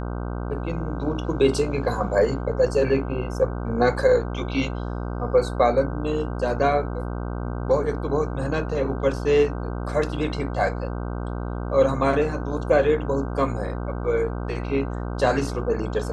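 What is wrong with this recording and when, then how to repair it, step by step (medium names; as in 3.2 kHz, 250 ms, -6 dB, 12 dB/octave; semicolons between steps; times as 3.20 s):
buzz 60 Hz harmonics 26 -29 dBFS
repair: de-hum 60 Hz, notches 26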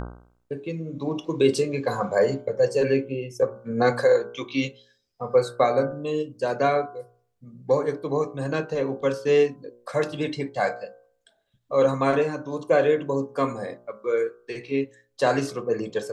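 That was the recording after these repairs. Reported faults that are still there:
nothing left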